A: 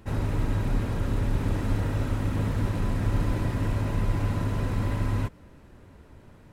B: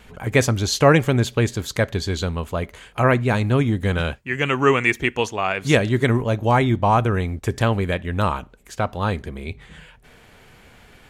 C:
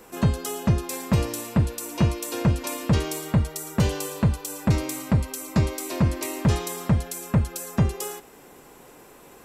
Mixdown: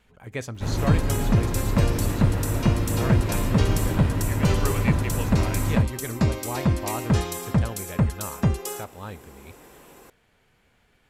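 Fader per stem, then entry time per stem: +1.5 dB, -15.0 dB, -0.5 dB; 0.55 s, 0.00 s, 0.65 s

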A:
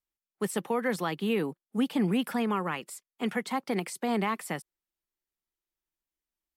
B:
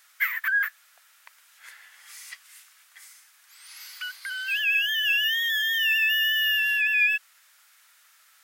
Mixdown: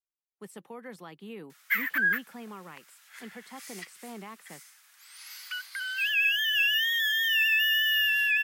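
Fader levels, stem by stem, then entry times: -14.5 dB, -1.5 dB; 0.00 s, 1.50 s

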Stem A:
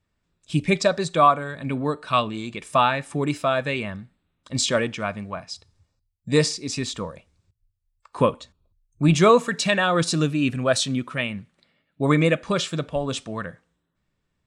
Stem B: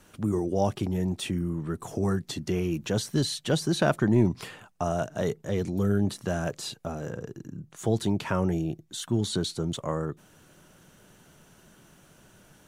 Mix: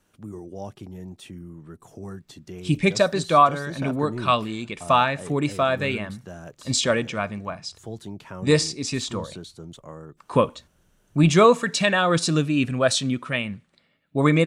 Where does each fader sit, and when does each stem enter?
+0.5 dB, -10.5 dB; 2.15 s, 0.00 s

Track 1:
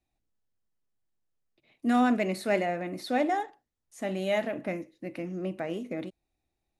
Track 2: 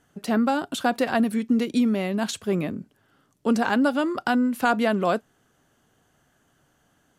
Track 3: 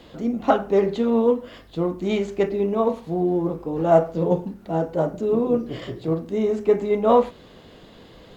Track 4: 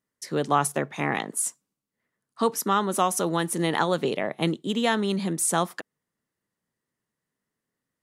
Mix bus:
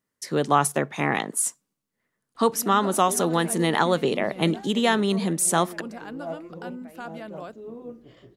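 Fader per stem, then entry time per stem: -15.5 dB, -16.5 dB, -18.5 dB, +2.5 dB; 1.25 s, 2.35 s, 2.35 s, 0.00 s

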